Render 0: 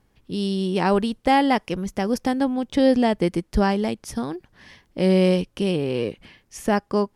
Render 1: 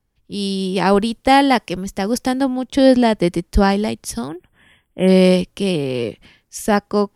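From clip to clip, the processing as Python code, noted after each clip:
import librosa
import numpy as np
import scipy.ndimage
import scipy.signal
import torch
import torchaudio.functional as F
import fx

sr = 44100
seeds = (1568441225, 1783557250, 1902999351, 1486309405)

y = fx.spec_erase(x, sr, start_s=4.28, length_s=0.8, low_hz=3500.0, high_hz=7500.0)
y = fx.high_shelf(y, sr, hz=4500.0, db=6.0)
y = fx.band_widen(y, sr, depth_pct=40)
y = F.gain(torch.from_numpy(y), 4.5).numpy()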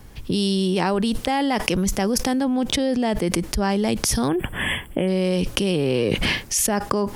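y = fx.env_flatten(x, sr, amount_pct=100)
y = F.gain(torch.from_numpy(y), -12.5).numpy()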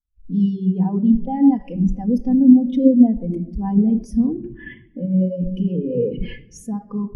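y = fx.leveller(x, sr, passes=1)
y = fx.room_shoebox(y, sr, seeds[0], volume_m3=3500.0, walls='mixed', distance_m=1.9)
y = fx.spectral_expand(y, sr, expansion=2.5)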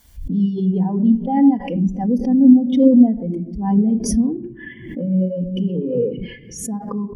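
y = fx.notch_comb(x, sr, f0_hz=1300.0)
y = fx.pre_swell(y, sr, db_per_s=71.0)
y = F.gain(torch.from_numpy(y), 1.0).numpy()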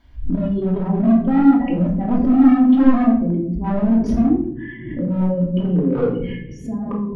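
y = np.clip(x, -10.0 ** (-16.5 / 20.0), 10.0 ** (-16.5 / 20.0))
y = fx.air_absorb(y, sr, metres=330.0)
y = fx.room_shoebox(y, sr, seeds[1], volume_m3=740.0, walls='furnished', distance_m=2.8)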